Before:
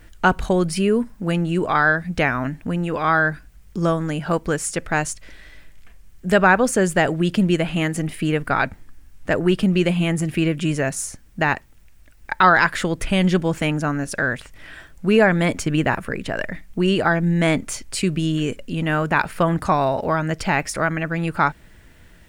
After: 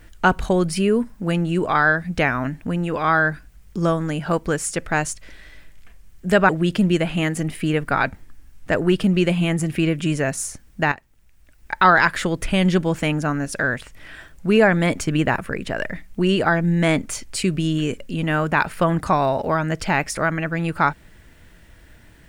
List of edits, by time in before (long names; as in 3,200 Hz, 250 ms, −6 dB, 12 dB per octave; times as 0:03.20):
0:06.49–0:07.08: remove
0:11.51–0:12.40: fade in, from −13 dB